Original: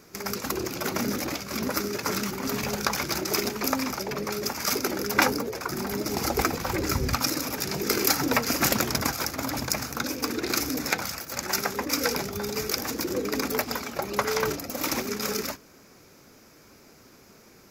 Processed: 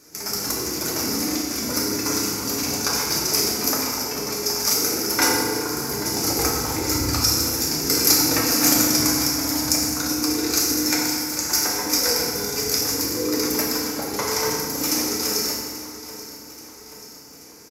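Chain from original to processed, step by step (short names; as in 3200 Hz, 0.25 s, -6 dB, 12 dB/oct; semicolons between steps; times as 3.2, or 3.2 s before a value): band shelf 7800 Hz +10 dB; notches 50/100/150 Hz; on a send: feedback echo 0.832 s, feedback 54%, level -15 dB; on the sum: FDN reverb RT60 1.7 s, low-frequency decay 1.4×, high-frequency decay 0.75×, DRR -4.5 dB; gain -5 dB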